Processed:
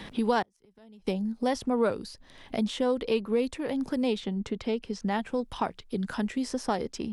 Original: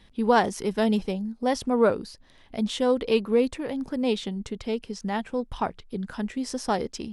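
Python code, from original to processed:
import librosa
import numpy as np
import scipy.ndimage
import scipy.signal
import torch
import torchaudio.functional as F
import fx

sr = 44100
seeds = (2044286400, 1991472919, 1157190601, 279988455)

y = fx.gate_flip(x, sr, shuts_db=-21.0, range_db=-35, at=(0.42, 1.07))
y = fx.high_shelf(y, sr, hz=7900.0, db=-11.5, at=(4.2, 5.11))
y = fx.band_squash(y, sr, depth_pct=70)
y = F.gain(torch.from_numpy(y), -3.0).numpy()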